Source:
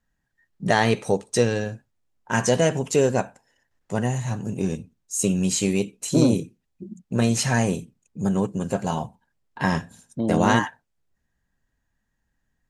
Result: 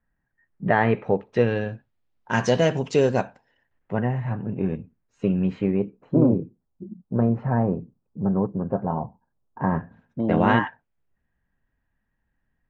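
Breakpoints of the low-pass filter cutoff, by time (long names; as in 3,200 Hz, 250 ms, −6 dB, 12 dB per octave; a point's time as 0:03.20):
low-pass filter 24 dB per octave
0:01.05 2,200 Hz
0:02.31 5,000 Hz
0:03.24 5,000 Hz
0:04.06 2,200 Hz
0:05.43 2,200 Hz
0:06.17 1,200 Hz
0:09.62 1,200 Hz
0:10.25 2,800 Hz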